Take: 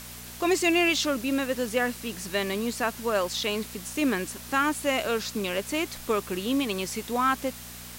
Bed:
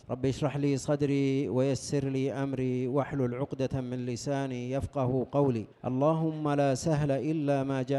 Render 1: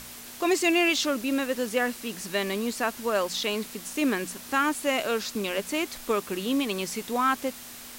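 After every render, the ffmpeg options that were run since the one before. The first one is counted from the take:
-af "bandreject=f=60:t=h:w=4,bandreject=f=120:t=h:w=4,bandreject=f=180:t=h:w=4"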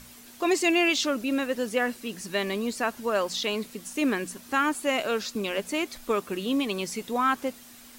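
-af "afftdn=nr=8:nf=-43"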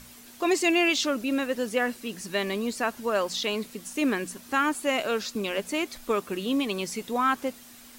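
-af anull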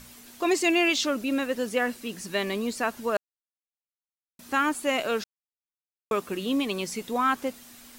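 -filter_complex "[0:a]asplit=5[a][b][c][d][e];[a]atrim=end=3.17,asetpts=PTS-STARTPTS,afade=t=out:st=3.166:d=0.004:c=hsin[f];[b]atrim=start=3.17:end=4.39,asetpts=PTS-STARTPTS,volume=0[g];[c]atrim=start=4.39:end=5.24,asetpts=PTS-STARTPTS,afade=t=in:d=0.004:c=hsin,afade=t=out:st=0.846:d=0.004:c=hsin[h];[d]atrim=start=5.24:end=6.11,asetpts=PTS-STARTPTS,volume=0[i];[e]atrim=start=6.11,asetpts=PTS-STARTPTS,afade=t=in:d=0.004:c=hsin[j];[f][g][h][i][j]concat=n=5:v=0:a=1"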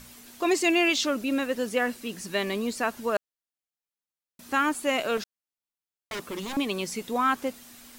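-filter_complex "[0:a]asettb=1/sr,asplit=3[a][b][c];[a]atrim=end=5.174[d];[b]atrim=start=5.17:end=6.57,asetpts=PTS-STARTPTS,afade=t=in:d=0.004:c=qsin,afade=t=out:st=1.396:d=0.004:c=qsin,aeval=exprs='0.0376*(abs(mod(val(0)/0.0376+3,4)-2)-1)':c=same[e];[c]atrim=start=6.566[f];[d][e]acrossfade=d=0.004:c1=hsin:c2=qsin[g];[g][f]acrossfade=d=0.004:c1=qsin:c2=hsin"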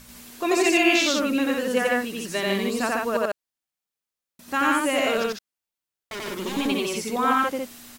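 -af "aecho=1:1:87.46|148.7:1|0.794"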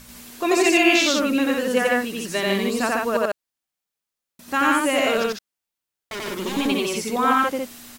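-af "volume=2.5dB"

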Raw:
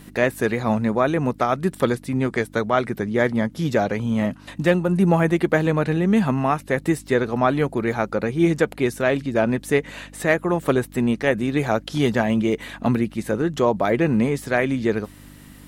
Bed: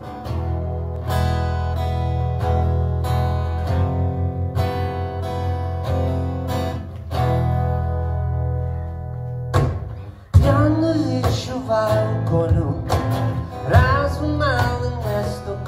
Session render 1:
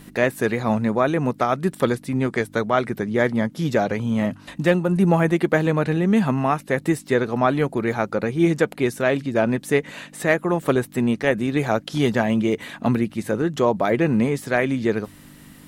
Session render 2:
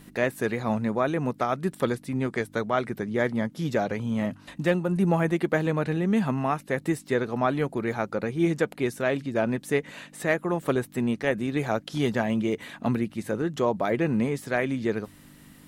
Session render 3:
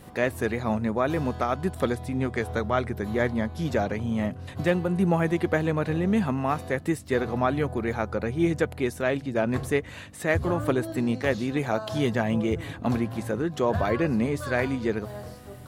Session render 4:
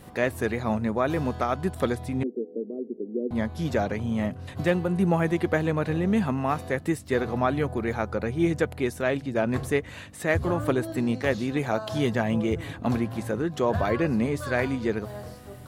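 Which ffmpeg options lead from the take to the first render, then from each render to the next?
-af "bandreject=f=50:t=h:w=4,bandreject=f=100:t=h:w=4"
-af "volume=-5.5dB"
-filter_complex "[1:a]volume=-16.5dB[a];[0:a][a]amix=inputs=2:normalize=0"
-filter_complex "[0:a]asettb=1/sr,asplit=3[a][b][c];[a]atrim=end=2.234[d];[b]atrim=start=2.23:end=3.31,asetpts=PTS-STARTPTS,afade=t=in:d=0.004:c=qsin,afade=t=out:st=1.076:d=0.004:c=qsin,asuperpass=centerf=330:order=8:qfactor=1.3[e];[c]atrim=start=3.306[f];[d][e]acrossfade=d=0.004:c1=hsin:c2=qsin[g];[g][f]acrossfade=d=0.004:c1=qsin:c2=hsin"

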